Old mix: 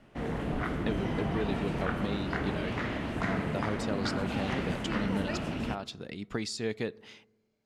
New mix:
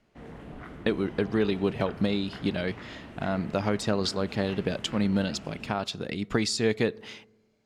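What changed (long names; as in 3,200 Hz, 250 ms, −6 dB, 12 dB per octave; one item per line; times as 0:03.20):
speech +8.0 dB
background −10.5 dB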